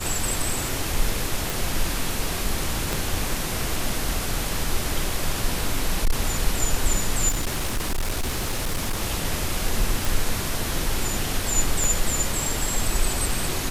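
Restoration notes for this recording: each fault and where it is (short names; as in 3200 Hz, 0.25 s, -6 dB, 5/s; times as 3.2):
1.5 pop
2.93 pop
5.63–6.21 clipped -14.5 dBFS
7.28–9.03 clipped -20.5 dBFS
10.05 pop
11.84 pop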